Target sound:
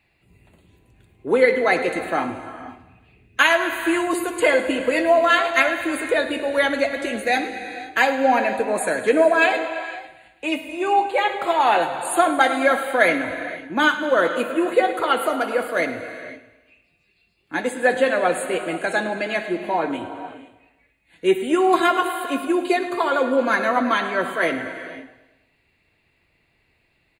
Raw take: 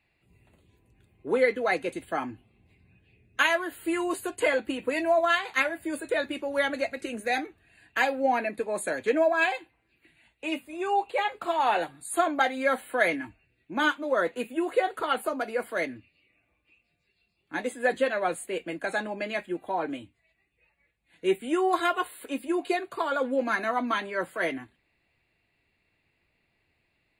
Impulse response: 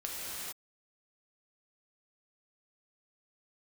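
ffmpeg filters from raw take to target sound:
-filter_complex "[0:a]aecho=1:1:106|212|318|424|530:0.178|0.0996|0.0558|0.0312|0.0175,asplit=2[link_01][link_02];[1:a]atrim=start_sample=2205,lowpass=8700,adelay=61[link_03];[link_02][link_03]afir=irnorm=-1:irlink=0,volume=-12dB[link_04];[link_01][link_04]amix=inputs=2:normalize=0,volume=7dB"

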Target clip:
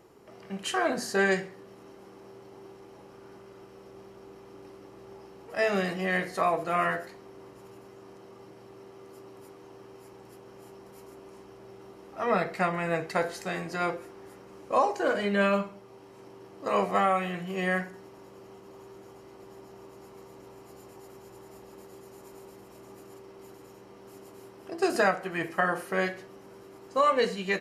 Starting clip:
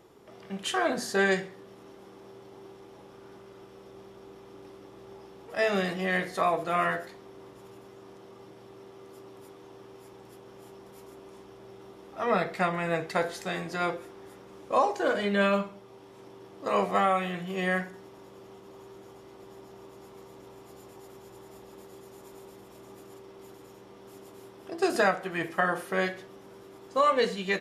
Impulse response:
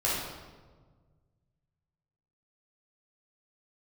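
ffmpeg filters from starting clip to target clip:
-af "bandreject=frequency=3500:width=6.7"

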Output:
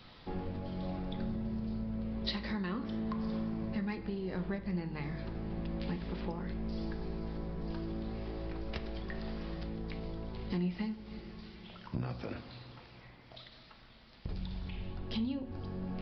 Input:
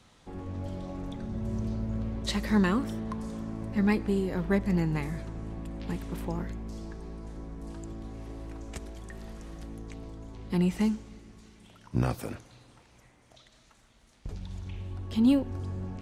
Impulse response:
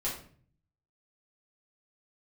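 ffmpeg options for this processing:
-filter_complex "[0:a]acompressor=threshold=-37dB:ratio=12,crystalizer=i=2.5:c=0,asplit=2[link_01][link_02];[1:a]atrim=start_sample=2205,lowpass=3200[link_03];[link_02][link_03]afir=irnorm=-1:irlink=0,volume=-9.5dB[link_04];[link_01][link_04]amix=inputs=2:normalize=0,aresample=11025,aresample=44100,volume=1dB"

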